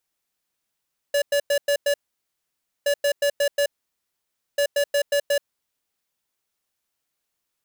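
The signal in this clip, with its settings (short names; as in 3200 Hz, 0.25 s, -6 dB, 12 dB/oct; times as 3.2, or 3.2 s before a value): beep pattern square 572 Hz, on 0.08 s, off 0.10 s, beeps 5, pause 0.92 s, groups 3, -20 dBFS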